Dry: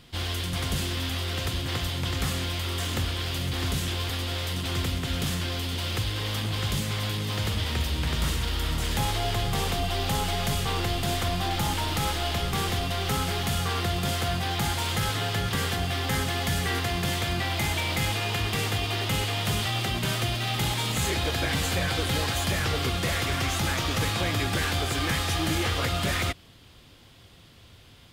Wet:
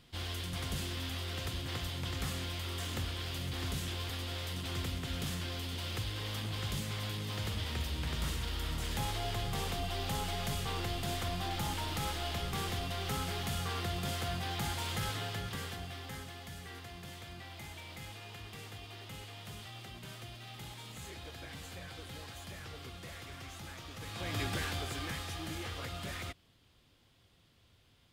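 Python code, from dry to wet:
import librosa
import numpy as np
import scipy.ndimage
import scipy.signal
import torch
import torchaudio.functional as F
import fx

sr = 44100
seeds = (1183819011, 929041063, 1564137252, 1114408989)

y = fx.gain(x, sr, db=fx.line((15.08, -9.0), (16.46, -20.0), (23.98, -20.0), (24.4, -8.0), (25.37, -14.5)))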